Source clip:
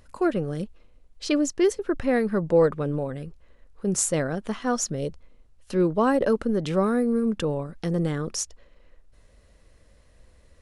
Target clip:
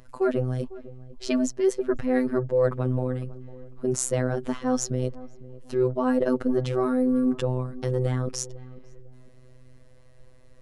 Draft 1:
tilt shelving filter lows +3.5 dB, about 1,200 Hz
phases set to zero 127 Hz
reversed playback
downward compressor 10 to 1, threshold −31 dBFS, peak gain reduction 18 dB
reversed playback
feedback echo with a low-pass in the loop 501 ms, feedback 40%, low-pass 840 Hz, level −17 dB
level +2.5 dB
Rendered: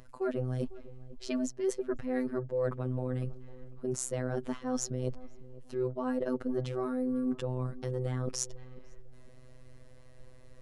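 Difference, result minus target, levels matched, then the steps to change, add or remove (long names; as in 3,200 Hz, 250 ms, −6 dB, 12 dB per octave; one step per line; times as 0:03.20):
downward compressor: peak gain reduction +9.5 dB
change: downward compressor 10 to 1, threshold −20.5 dBFS, peak gain reduction 8.5 dB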